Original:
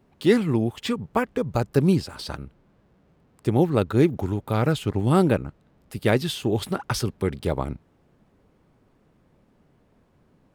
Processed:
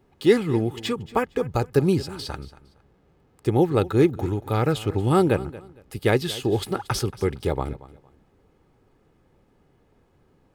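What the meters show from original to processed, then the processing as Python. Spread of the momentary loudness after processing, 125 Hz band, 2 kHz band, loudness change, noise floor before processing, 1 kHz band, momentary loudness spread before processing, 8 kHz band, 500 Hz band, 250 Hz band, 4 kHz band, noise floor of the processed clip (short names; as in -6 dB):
14 LU, -0.5 dB, 0.0 dB, +0.5 dB, -63 dBFS, +1.5 dB, 14 LU, +0.5 dB, +2.0 dB, -1.0 dB, +0.5 dB, -62 dBFS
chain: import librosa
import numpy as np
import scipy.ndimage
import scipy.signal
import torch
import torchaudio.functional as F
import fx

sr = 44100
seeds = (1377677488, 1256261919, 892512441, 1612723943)

p1 = x + 0.35 * np.pad(x, (int(2.4 * sr / 1000.0), 0))[:len(x)]
y = p1 + fx.echo_feedback(p1, sr, ms=230, feedback_pct=25, wet_db=-18.0, dry=0)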